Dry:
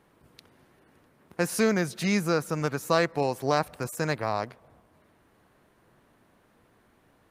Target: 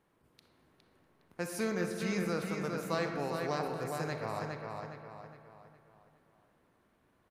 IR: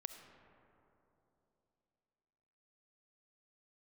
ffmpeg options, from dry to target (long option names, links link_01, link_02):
-filter_complex "[0:a]asplit=2[link_01][link_02];[link_02]adelay=411,lowpass=frequency=4900:poles=1,volume=-4dB,asplit=2[link_03][link_04];[link_04]adelay=411,lowpass=frequency=4900:poles=1,volume=0.43,asplit=2[link_05][link_06];[link_06]adelay=411,lowpass=frequency=4900:poles=1,volume=0.43,asplit=2[link_07][link_08];[link_08]adelay=411,lowpass=frequency=4900:poles=1,volume=0.43,asplit=2[link_09][link_10];[link_10]adelay=411,lowpass=frequency=4900:poles=1,volume=0.43[link_11];[link_01][link_03][link_05][link_07][link_09][link_11]amix=inputs=6:normalize=0[link_12];[1:a]atrim=start_sample=2205,asetrate=74970,aresample=44100[link_13];[link_12][link_13]afir=irnorm=-1:irlink=0,volume=-1.5dB"